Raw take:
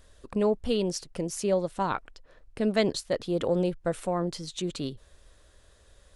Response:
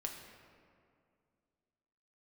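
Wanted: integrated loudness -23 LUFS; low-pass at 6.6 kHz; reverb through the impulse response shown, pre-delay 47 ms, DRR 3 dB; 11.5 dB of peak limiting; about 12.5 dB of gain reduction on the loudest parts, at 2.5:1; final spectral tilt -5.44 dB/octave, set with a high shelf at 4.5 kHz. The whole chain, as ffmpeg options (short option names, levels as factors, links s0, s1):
-filter_complex "[0:a]lowpass=6600,highshelf=f=4500:g=-9,acompressor=threshold=0.01:ratio=2.5,alimiter=level_in=4.22:limit=0.0631:level=0:latency=1,volume=0.237,asplit=2[s0][s1];[1:a]atrim=start_sample=2205,adelay=47[s2];[s1][s2]afir=irnorm=-1:irlink=0,volume=0.794[s3];[s0][s3]amix=inputs=2:normalize=0,volume=12.6"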